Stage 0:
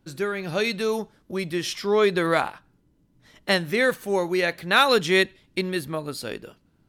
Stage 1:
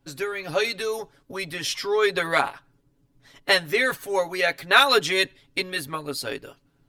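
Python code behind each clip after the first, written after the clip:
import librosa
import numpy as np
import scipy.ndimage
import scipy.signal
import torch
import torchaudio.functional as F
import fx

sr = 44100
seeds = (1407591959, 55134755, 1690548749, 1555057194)

y = fx.hpss(x, sr, part='harmonic', gain_db=-8)
y = fx.peak_eq(y, sr, hz=190.0, db=-5.0, octaves=1.1)
y = y + 0.84 * np.pad(y, (int(7.2 * sr / 1000.0), 0))[:len(y)]
y = F.gain(torch.from_numpy(y), 2.0).numpy()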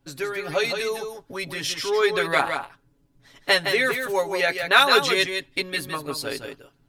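y = x + 10.0 ** (-6.5 / 20.0) * np.pad(x, (int(164 * sr / 1000.0), 0))[:len(x)]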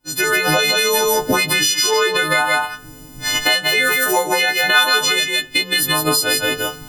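y = fx.freq_snap(x, sr, grid_st=3)
y = fx.recorder_agc(y, sr, target_db=-4.0, rise_db_per_s=75.0, max_gain_db=30)
y = fx.rev_fdn(y, sr, rt60_s=0.37, lf_ratio=0.8, hf_ratio=0.45, size_ms=20.0, drr_db=9.5)
y = F.gain(torch.from_numpy(y), -4.0).numpy()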